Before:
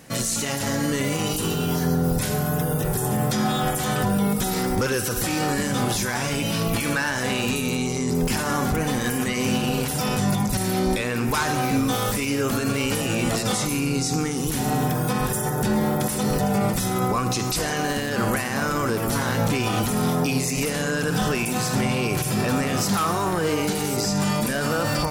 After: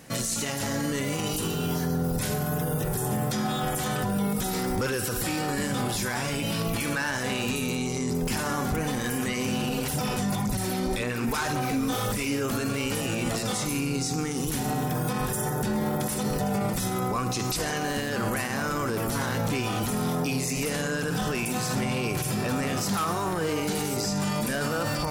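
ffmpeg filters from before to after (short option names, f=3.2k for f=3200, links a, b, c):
-filter_complex "[0:a]asettb=1/sr,asplit=3[a][b][c];[a]atrim=end=4.794[d];[b]atrim=start=4.79:end=6.65,asetpts=PTS-STARTPTS,afade=t=in:d=0.004:c=qsin,afade=t=out:st=1.856:d=0.004:c=qsin,bandreject=f=6.1k:w=12[e];[c]atrim=start=6.646[f];[d][e]acrossfade=d=0.004:c1=hsin:c2=qsin[g];[g][f]acrossfade=d=0.004:c1=qsin:c2=hsin,asplit=3[h][i][j];[h]afade=t=out:st=9.69:d=0.02[k];[i]aphaser=in_gain=1:out_gain=1:delay=4.5:decay=0.39:speed=1.9:type=sinusoidal,afade=t=in:st=9.69:d=0.02,afade=t=out:st=12.3:d=0.02[l];[j]afade=t=in:st=12.3:d=0.02[m];[k][l][m]amix=inputs=3:normalize=0,asettb=1/sr,asplit=3[n][o][p];[n]atrim=end=12.904[q];[o]atrim=start=12.9:end=14.9,asetpts=PTS-STARTPTS,afade=t=in:d=0.004:c=qsin,afade=t=out:st=1.996:d=0.004:c=qsin,aeval=exprs='sgn(val(0))*max(abs(val(0))-0.00355,0)':c=same[r];[p]atrim=start=14.896[s];[q][r]acrossfade=d=0.004:c1=hsin:c2=qsin[t];[t][s]acrossfade=d=0.004:c1=qsin:c2=hsin,alimiter=limit=-18dB:level=0:latency=1:release=39,volume=-1.5dB"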